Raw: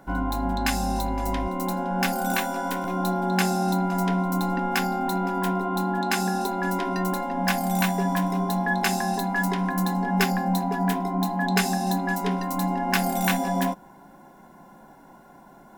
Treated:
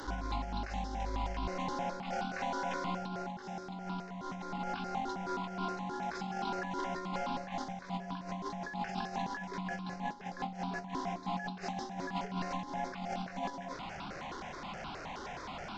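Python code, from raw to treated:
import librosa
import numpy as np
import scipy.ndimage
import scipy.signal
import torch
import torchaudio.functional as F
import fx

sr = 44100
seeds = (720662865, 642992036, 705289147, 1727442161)

y = fx.delta_mod(x, sr, bps=32000, step_db=-29.5)
y = fx.over_compress(y, sr, threshold_db=-27.0, ratio=-0.5)
y = fx.phaser_held(y, sr, hz=9.5, low_hz=670.0, high_hz=1900.0)
y = F.gain(torch.from_numpy(y), -7.0).numpy()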